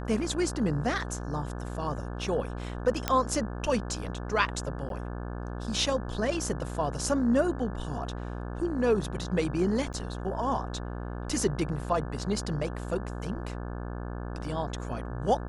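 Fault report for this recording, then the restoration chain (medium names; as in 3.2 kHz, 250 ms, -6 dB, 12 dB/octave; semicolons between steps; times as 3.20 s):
buzz 60 Hz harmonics 29 -36 dBFS
3.08 s: pop -10 dBFS
4.89–4.90 s: dropout 12 ms
9.93–9.94 s: dropout 8.8 ms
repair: de-click; de-hum 60 Hz, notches 29; interpolate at 4.89 s, 12 ms; interpolate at 9.93 s, 8.8 ms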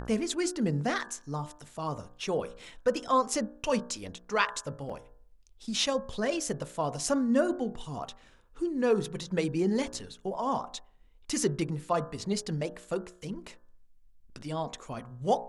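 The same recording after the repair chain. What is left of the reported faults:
nothing left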